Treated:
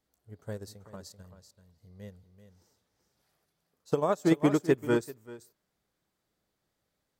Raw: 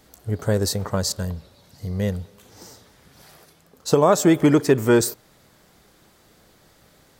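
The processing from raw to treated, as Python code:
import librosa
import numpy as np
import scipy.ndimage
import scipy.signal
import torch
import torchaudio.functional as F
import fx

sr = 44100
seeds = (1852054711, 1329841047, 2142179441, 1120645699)

y = x + 10.0 ** (-7.5 / 20.0) * np.pad(x, (int(387 * sr / 1000.0), 0))[:len(x)]
y = fx.upward_expand(y, sr, threshold_db=-24.0, expansion=2.5)
y = F.gain(torch.from_numpy(y), -7.0).numpy()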